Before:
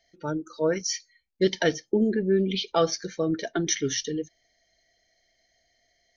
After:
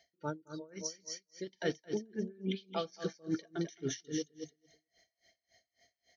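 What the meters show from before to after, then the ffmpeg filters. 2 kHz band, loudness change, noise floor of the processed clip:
−13.5 dB, −13.0 dB, below −85 dBFS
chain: -af "highpass=75,areverse,acompressor=threshold=-32dB:ratio=6,areverse,aecho=1:1:219|438|657:0.376|0.0864|0.0199,aeval=exprs='val(0)*pow(10,-28*(0.5-0.5*cos(2*PI*3.6*n/s))/20)':channel_layout=same,volume=2dB"

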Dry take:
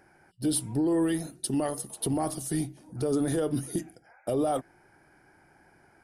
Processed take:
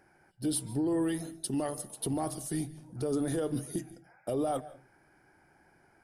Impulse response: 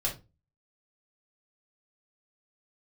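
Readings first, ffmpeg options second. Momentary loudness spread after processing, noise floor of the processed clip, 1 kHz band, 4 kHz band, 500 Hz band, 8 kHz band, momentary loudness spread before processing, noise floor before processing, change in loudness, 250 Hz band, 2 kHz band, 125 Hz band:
8 LU, −65 dBFS, −4.0 dB, −4.0 dB, −4.0 dB, −4.0 dB, 8 LU, −62 dBFS, −4.0 dB, −4.0 dB, −4.0 dB, −4.0 dB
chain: -filter_complex "[0:a]asplit=2[link_01][link_02];[1:a]atrim=start_sample=2205,adelay=143[link_03];[link_02][link_03]afir=irnorm=-1:irlink=0,volume=-24dB[link_04];[link_01][link_04]amix=inputs=2:normalize=0,volume=-4dB"

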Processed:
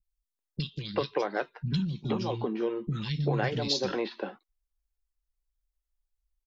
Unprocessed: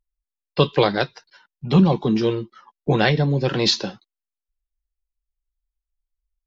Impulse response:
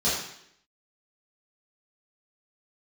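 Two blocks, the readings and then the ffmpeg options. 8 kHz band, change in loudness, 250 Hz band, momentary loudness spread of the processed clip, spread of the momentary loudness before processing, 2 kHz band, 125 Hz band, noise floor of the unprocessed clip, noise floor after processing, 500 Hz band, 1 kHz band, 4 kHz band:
can't be measured, −11.0 dB, −11.5 dB, 9 LU, 13 LU, −10.5 dB, −10.0 dB, below −85 dBFS, below −85 dBFS, −9.5 dB, −9.5 dB, −10.5 dB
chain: -filter_complex "[0:a]acompressor=threshold=-24dB:ratio=6,acrossover=split=240|2600[link_01][link_02][link_03];[link_03]adelay=30[link_04];[link_02]adelay=390[link_05];[link_01][link_05][link_04]amix=inputs=3:normalize=0"

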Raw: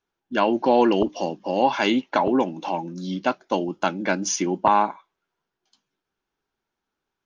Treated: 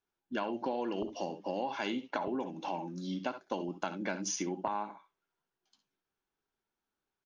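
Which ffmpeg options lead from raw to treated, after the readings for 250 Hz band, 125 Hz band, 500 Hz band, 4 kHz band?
−13.5 dB, −11.0 dB, −14.5 dB, −13.0 dB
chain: -af "aecho=1:1:58|68:0.178|0.2,acompressor=threshold=-24dB:ratio=6,volume=-7.5dB"

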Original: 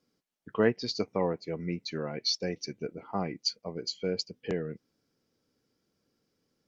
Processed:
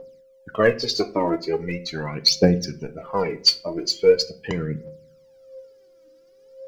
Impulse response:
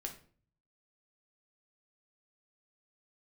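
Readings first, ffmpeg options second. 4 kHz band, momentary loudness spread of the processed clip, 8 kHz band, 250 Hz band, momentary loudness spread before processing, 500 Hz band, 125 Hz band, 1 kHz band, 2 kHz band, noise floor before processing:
+12.0 dB, 12 LU, can't be measured, +8.5 dB, 10 LU, +11.0 dB, +10.5 dB, +9.5 dB, +10.5 dB, −79 dBFS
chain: -filter_complex "[0:a]aeval=exprs='val(0)+0.002*sin(2*PI*530*n/s)':channel_layout=same,aphaser=in_gain=1:out_gain=1:delay=3.3:decay=0.8:speed=0.41:type=triangular,asplit=2[link_01][link_02];[1:a]atrim=start_sample=2205[link_03];[link_02][link_03]afir=irnorm=-1:irlink=0,volume=-1.5dB[link_04];[link_01][link_04]amix=inputs=2:normalize=0,volume=2.5dB"

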